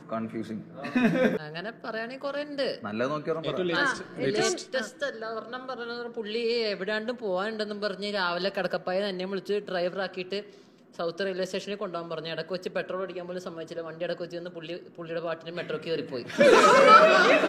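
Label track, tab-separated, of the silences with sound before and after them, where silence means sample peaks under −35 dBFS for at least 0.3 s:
10.410000	10.990000	silence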